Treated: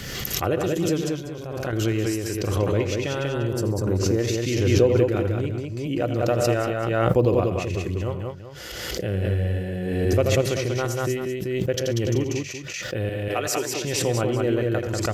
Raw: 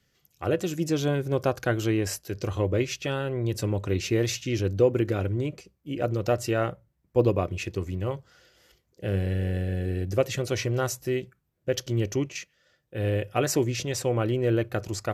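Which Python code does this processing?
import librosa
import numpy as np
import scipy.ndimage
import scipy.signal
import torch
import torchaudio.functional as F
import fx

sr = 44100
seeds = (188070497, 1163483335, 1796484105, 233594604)

y = fx.band_shelf(x, sr, hz=2700.0, db=-13.5, octaves=1.2, at=(3.29, 4.19))
y = fx.highpass(y, sr, hz=650.0, slope=6, at=(13.09, 13.84))
y = fx.transient(y, sr, attack_db=1, sustain_db=-5)
y = fx.level_steps(y, sr, step_db=19, at=(1.01, 1.73))
y = fx.echo_multitap(y, sr, ms=(83, 123, 138, 190, 384), db=(-12.0, -19.5, -18.0, -3.0, -12.5))
y = fx.pre_swell(y, sr, db_per_s=28.0)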